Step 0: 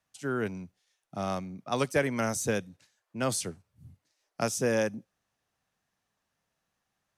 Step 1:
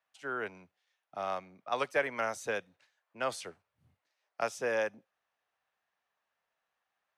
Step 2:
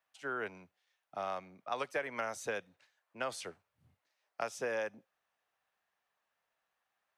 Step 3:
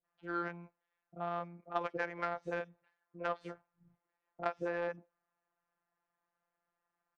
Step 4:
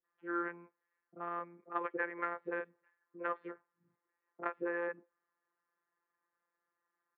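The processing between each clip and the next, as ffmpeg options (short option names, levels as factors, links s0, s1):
-filter_complex "[0:a]acrossover=split=470 3600:gain=0.112 1 0.178[s0][s1][s2];[s0][s1][s2]amix=inputs=3:normalize=0"
-af "acompressor=threshold=0.0224:ratio=4"
-filter_complex "[0:a]afftfilt=real='hypot(re,im)*cos(PI*b)':imag='0':win_size=1024:overlap=0.75,acrossover=split=500|4800[s0][s1][s2];[s1]adelay=40[s3];[s2]adelay=90[s4];[s0][s3][s4]amix=inputs=3:normalize=0,adynamicsmooth=sensitivity=1.5:basefreq=1200,volume=2.66"
-af "highpass=160,equalizer=f=170:t=q:w=4:g=-7,equalizer=f=260:t=q:w=4:g=6,equalizer=f=400:t=q:w=4:g=10,equalizer=f=710:t=q:w=4:g=-8,equalizer=f=1100:t=q:w=4:g=6,equalizer=f=1800:t=q:w=4:g=7,lowpass=f=2400:w=0.5412,lowpass=f=2400:w=1.3066,volume=0.75"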